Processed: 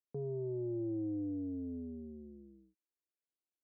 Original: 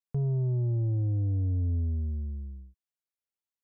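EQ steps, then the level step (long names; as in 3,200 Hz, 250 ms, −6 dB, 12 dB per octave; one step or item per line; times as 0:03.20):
four-pole ladder band-pass 370 Hz, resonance 50%
+9.5 dB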